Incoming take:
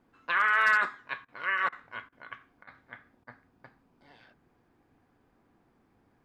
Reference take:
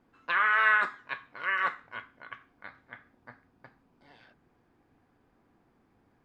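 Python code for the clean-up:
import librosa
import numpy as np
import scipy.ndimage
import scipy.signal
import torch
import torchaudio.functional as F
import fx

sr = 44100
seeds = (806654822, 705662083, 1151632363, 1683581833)

y = fx.fix_declip(x, sr, threshold_db=-15.0)
y = fx.fix_interpolate(y, sr, at_s=(1.25, 1.69, 2.09, 2.64, 3.24), length_ms=32.0)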